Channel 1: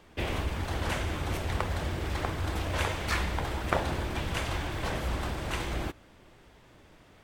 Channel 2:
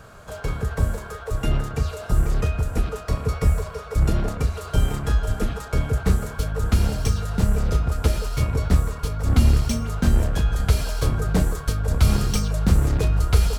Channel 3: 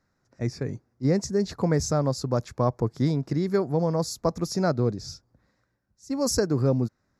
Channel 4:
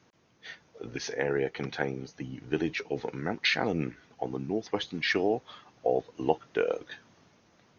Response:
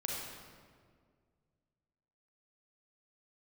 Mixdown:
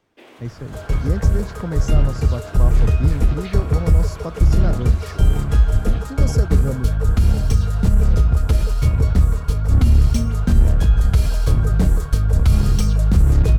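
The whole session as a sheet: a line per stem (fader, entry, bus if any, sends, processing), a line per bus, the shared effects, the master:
−12.0 dB, 0.00 s, no send, Butterworth high-pass 250 Hz
−1.0 dB, 0.45 s, no send, brickwall limiter −12 dBFS, peak gain reduction 6.5 dB
−7.0 dB, 0.00 s, no send, no processing
−14.5 dB, 0.00 s, no send, no processing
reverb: not used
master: low-shelf EQ 210 Hz +9.5 dB

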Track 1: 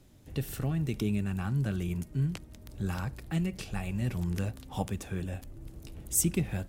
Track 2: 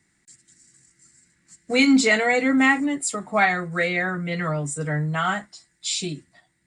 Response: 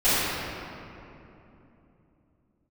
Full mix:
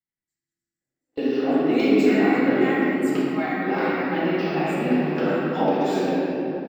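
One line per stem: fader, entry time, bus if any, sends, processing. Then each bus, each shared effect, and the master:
+2.0 dB, 0.80 s, send −5 dB, noise gate −42 dBFS, range −21 dB; Chebyshev band-pass filter 260–5,100 Hz, order 4; tilt shelving filter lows +4 dB, about 1,200 Hz
−16.0 dB, 0.00 s, send −11 dB, no processing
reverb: on, RT60 3.0 s, pre-delay 4 ms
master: noise gate with hold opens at −29 dBFS; high-shelf EQ 6,500 Hz −8.5 dB; linearly interpolated sample-rate reduction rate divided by 2×

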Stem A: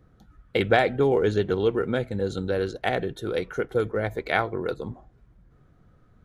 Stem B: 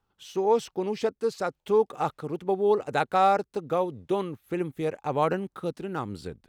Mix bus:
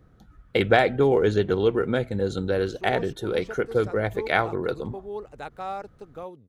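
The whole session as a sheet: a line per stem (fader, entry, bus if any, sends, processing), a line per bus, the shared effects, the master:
+1.5 dB, 0.00 s, no send, no processing
−12.0 dB, 2.45 s, no send, no processing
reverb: not used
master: no processing

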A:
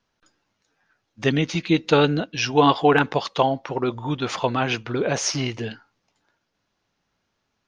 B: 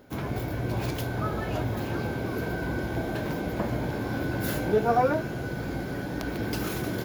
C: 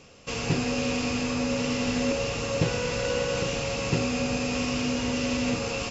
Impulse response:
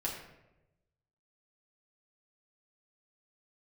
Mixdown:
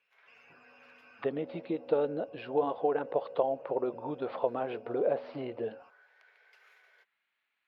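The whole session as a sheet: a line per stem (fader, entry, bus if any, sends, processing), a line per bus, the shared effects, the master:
+2.0 dB, 0.00 s, no send, downward compressor 4 to 1, threshold −23 dBFS, peak gain reduction 10.5 dB; Butterworth low-pass 4,500 Hz 72 dB per octave
−18.0 dB, 0.00 s, no send, Butterworth high-pass 400 Hz 96 dB per octave
−16.0 dB, 0.00 s, no send, spectral peaks only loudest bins 64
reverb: not used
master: envelope filter 540–2,200 Hz, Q 2.6, down, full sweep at −26.5 dBFS

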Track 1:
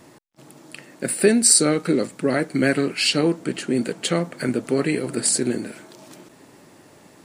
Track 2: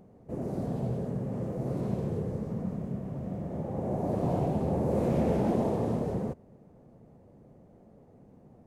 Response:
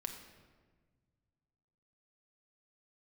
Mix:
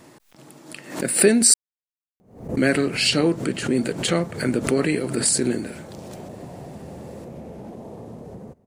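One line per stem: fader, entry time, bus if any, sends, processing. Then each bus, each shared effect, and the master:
0.0 dB, 0.00 s, muted 0:01.54–0:02.57, no send, no processing
−4.5 dB, 2.20 s, no send, high-shelf EQ 4,100 Hz +6 dB; downward compressor 6 to 1, threshold −30 dBFS, peak gain reduction 8 dB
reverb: not used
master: background raised ahead of every attack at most 110 dB per second

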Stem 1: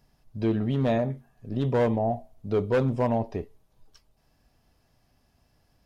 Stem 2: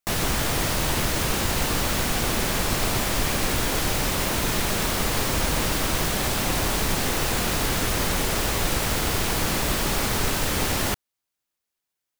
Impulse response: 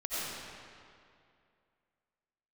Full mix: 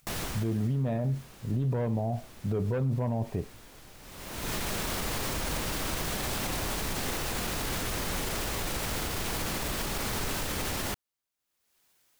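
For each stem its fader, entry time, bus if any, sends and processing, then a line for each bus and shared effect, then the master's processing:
−1.0 dB, 0.00 s, no send, low-pass filter 2,700 Hz; parametric band 130 Hz +10 dB 1.3 octaves; downward expander −53 dBFS
−4.5 dB, 0.00 s, no send, upward compression, threshold −46 dBFS; automatic ducking −23 dB, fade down 0.90 s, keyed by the first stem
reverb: not used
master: brickwall limiter −22.5 dBFS, peak gain reduction 10.5 dB

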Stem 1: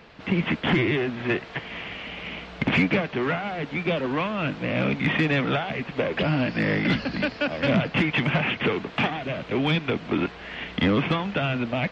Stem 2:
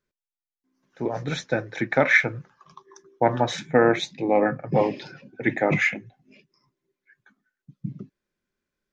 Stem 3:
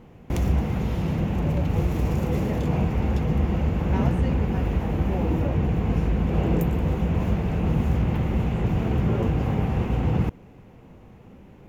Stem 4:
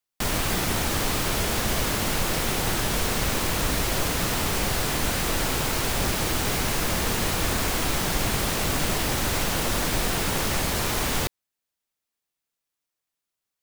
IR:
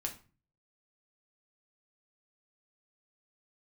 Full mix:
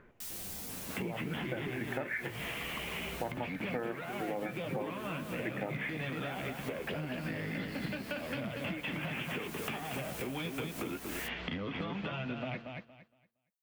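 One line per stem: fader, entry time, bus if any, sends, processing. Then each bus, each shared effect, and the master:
+2.0 dB, 0.70 s, bus A, no send, echo send −20.5 dB, no processing
−11.0 dB, 0.00 s, no bus, no send, no echo send, upward compression, threshold −23 dBFS; low-pass filter 2,200 Hz 24 dB per octave
−12.0 dB, 0.00 s, bus A, no send, no echo send, high-pass filter 340 Hz 6 dB per octave; brickwall limiter −27 dBFS, peak gain reduction 12.5 dB
−8.5 dB, 0.00 s, bus A, no send, no echo send, first-order pre-emphasis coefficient 0.9; automatic ducking −7 dB, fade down 1.85 s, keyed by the second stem
bus A: 0.0 dB, flanger 0.24 Hz, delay 8 ms, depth 8.3 ms, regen −24%; downward compressor, threshold −35 dBFS, peak gain reduction 16 dB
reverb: not used
echo: repeating echo 232 ms, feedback 22%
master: downward compressor 6 to 1, threshold −33 dBFS, peak gain reduction 9.5 dB

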